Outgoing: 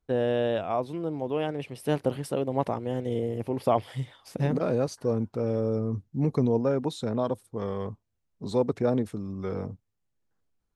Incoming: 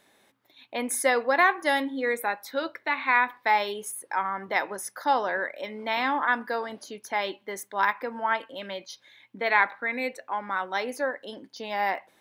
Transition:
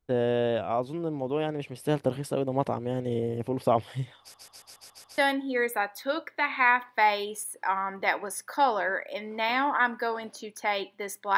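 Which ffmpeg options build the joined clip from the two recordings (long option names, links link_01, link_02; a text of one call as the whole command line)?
ffmpeg -i cue0.wav -i cue1.wav -filter_complex "[0:a]apad=whole_dur=11.37,atrim=end=11.37,asplit=7[link_01][link_02][link_03][link_04][link_05][link_06][link_07];[link_01]atrim=end=4.342[link_08];[link_02]atrim=start=4.198:end=4.342[link_09];[link_03]atrim=start=4.198:end=4.342[link_10];[link_04]atrim=start=4.198:end=4.342[link_11];[link_05]atrim=start=4.198:end=4.342[link_12];[link_06]atrim=start=4.198:end=4.342[link_13];[link_07]atrim=start=4.198:end=4.342[link_14];[1:a]atrim=start=1.658:end=7.85[link_15];[link_08][link_09]acrossfade=duration=0.004:curve1=hsin:curve2=hsin[link_16];[link_16][link_10]acrossfade=duration=0.004:curve1=hsin:curve2=hsin[link_17];[link_17][link_11]acrossfade=duration=0.004:curve1=hsin:curve2=hsin[link_18];[link_18][link_12]acrossfade=duration=0.004:curve1=hsin:curve2=hsin[link_19];[link_19][link_13]acrossfade=duration=0.004:curve1=hsin:curve2=hsin[link_20];[link_20][link_14]acrossfade=duration=0.004:curve1=hsin:curve2=hsin[link_21];[link_21][link_15]acrossfade=duration=0.004:curve1=hsin:curve2=hsin" out.wav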